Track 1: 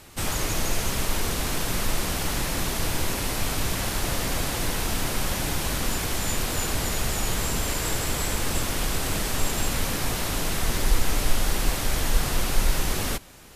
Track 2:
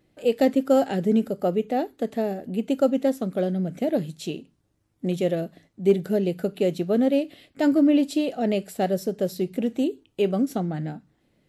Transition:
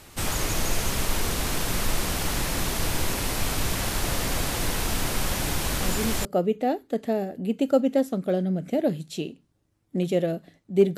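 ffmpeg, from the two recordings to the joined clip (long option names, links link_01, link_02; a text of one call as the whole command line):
ffmpeg -i cue0.wav -i cue1.wav -filter_complex "[1:a]asplit=2[link_01][link_02];[0:a]apad=whole_dur=10.97,atrim=end=10.97,atrim=end=6.252[link_03];[link_02]atrim=start=1.338:end=6.06[link_04];[link_01]atrim=start=0.89:end=1.34,asetpts=PTS-STARTPTS,volume=-9dB,afade=type=in:duration=0.004:curve=hsin,afade=type=out:start_time=0.446:duration=0.004:curve=hsin,adelay=5800[link_05];[link_03][link_04]acrossfade=duration=0.004:curve1=hsin:curve2=hsin[link_06];[link_06][link_05]amix=inputs=2:normalize=0" out.wav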